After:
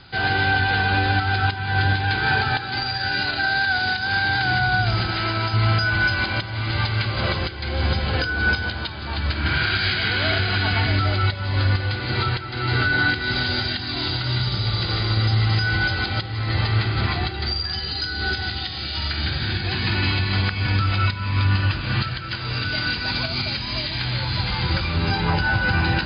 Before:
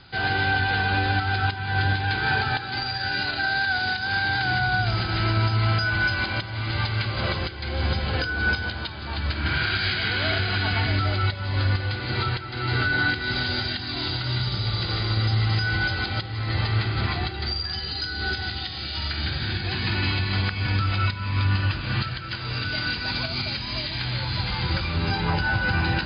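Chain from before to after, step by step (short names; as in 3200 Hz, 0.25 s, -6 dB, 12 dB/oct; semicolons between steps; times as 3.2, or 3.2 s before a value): 5.11–5.54 low shelf 230 Hz -9.5 dB; gain +3 dB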